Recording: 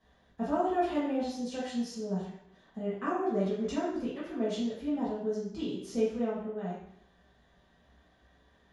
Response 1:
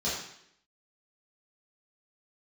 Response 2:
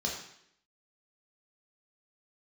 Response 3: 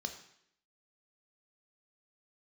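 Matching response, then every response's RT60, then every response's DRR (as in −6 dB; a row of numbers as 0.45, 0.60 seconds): 1; 0.70, 0.70, 0.70 seconds; −9.5, −2.0, 5.5 decibels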